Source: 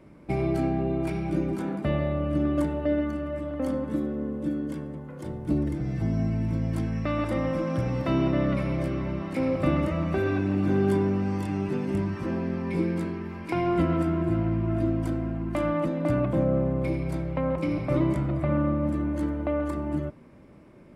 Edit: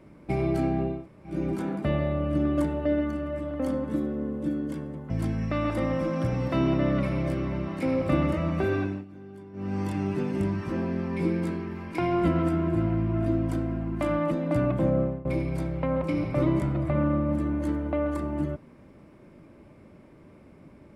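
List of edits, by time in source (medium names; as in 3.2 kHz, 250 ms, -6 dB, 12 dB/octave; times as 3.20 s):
0.95–1.34 s: room tone, crossfade 0.24 s
5.10–6.64 s: delete
10.20–11.46 s: dip -21.5 dB, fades 0.39 s equal-power
16.53–16.79 s: fade out, to -21 dB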